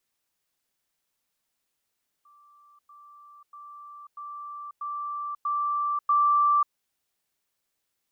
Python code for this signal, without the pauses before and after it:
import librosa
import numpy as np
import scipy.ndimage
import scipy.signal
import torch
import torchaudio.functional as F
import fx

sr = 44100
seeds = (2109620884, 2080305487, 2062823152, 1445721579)

y = fx.level_ladder(sr, hz=1170.0, from_db=-54.0, step_db=6.0, steps=7, dwell_s=0.54, gap_s=0.1)